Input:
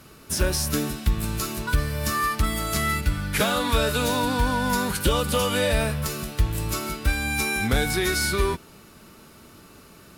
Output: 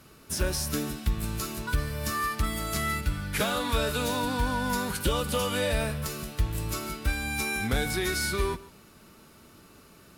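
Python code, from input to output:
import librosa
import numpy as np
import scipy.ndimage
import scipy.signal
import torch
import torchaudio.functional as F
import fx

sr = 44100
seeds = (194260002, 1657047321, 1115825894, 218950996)

y = x + 10.0 ** (-19.5 / 20.0) * np.pad(x, (int(145 * sr / 1000.0), 0))[:len(x)]
y = y * 10.0 ** (-5.0 / 20.0)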